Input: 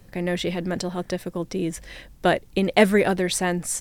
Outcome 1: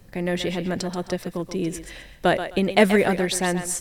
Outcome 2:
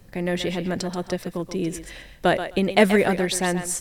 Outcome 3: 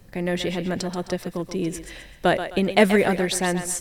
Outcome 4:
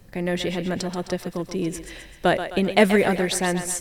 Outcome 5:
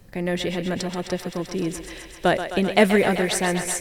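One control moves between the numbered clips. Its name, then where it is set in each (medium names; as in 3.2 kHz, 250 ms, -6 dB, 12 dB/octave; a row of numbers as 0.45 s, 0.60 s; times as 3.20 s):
thinning echo, feedback: 24%, 16%, 37%, 55%, 85%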